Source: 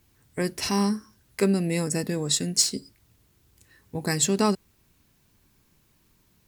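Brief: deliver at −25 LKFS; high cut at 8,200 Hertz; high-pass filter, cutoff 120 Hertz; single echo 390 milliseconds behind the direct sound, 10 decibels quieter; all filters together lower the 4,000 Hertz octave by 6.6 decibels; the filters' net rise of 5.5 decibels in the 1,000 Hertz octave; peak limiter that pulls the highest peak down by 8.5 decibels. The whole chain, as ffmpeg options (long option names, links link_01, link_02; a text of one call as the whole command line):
ffmpeg -i in.wav -af "highpass=120,lowpass=8200,equalizer=frequency=1000:width_type=o:gain=7,equalizer=frequency=4000:width_type=o:gain=-8.5,alimiter=limit=-15.5dB:level=0:latency=1,aecho=1:1:390:0.316,volume=3.5dB" out.wav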